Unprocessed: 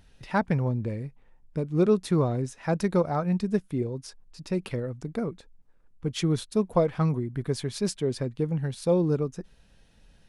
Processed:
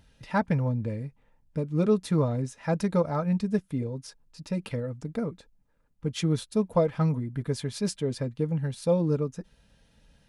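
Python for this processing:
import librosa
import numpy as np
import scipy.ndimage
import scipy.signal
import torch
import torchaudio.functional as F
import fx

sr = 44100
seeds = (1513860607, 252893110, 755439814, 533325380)

y = fx.notch_comb(x, sr, f0_hz=370.0)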